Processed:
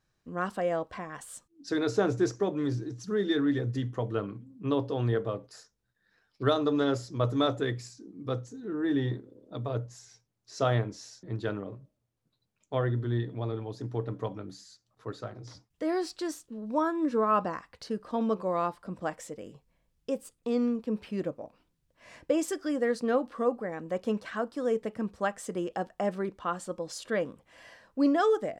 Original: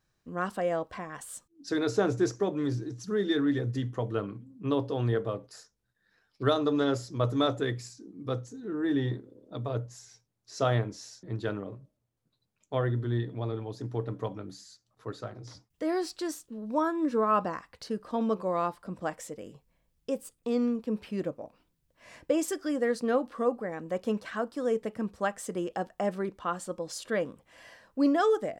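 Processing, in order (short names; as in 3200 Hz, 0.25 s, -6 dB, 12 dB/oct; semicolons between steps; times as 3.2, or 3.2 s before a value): high shelf 12000 Hz -8.5 dB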